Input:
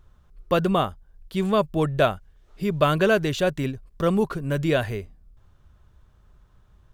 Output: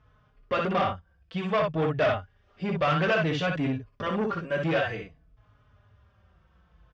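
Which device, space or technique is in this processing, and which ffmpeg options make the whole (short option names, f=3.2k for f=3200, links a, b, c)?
barber-pole flanger into a guitar amplifier: -filter_complex "[0:a]aecho=1:1:18|61:0.376|0.596,asplit=2[a][b];[b]adelay=4.2,afreqshift=-0.56[c];[a][c]amix=inputs=2:normalize=1,asoftclip=type=tanh:threshold=-22.5dB,highpass=86,equalizer=f=130:t=q:w=4:g=-4,equalizer=f=210:t=q:w=4:g=-6,equalizer=f=360:t=q:w=4:g=-9,equalizer=f=910:t=q:w=4:g=-4,equalizer=f=4k:t=q:w=4:g=-9,lowpass=f=4.6k:w=0.5412,lowpass=f=4.6k:w=1.3066,volume=4.5dB"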